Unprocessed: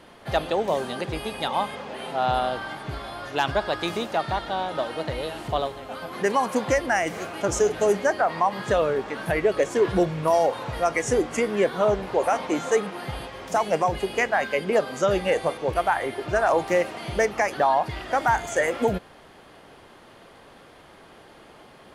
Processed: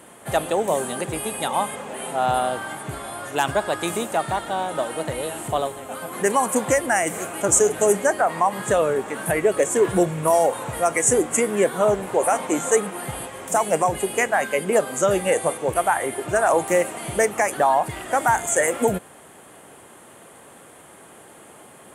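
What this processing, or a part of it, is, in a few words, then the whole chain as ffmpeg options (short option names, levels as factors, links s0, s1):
budget condenser microphone: -af "highpass=98,highshelf=f=6400:t=q:w=3:g=10,volume=1.33"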